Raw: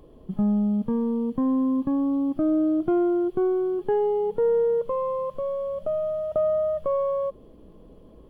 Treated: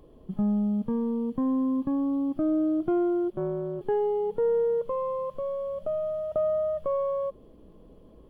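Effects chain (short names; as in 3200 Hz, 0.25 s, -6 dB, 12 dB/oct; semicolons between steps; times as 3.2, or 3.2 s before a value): 3.3–3.81 AM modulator 210 Hz, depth 95%; gain -3 dB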